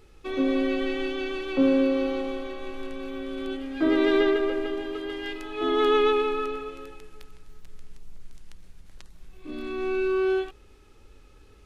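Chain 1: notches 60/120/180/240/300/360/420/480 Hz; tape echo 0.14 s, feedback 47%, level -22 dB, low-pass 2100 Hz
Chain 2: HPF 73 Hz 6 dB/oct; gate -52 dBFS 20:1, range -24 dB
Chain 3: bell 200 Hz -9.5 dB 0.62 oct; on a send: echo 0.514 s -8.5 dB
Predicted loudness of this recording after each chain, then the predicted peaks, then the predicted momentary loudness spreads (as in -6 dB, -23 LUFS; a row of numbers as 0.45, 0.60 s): -26.5, -26.5, -27.0 LUFS; -11.5, -11.0, -12.0 dBFS; 15, 15, 15 LU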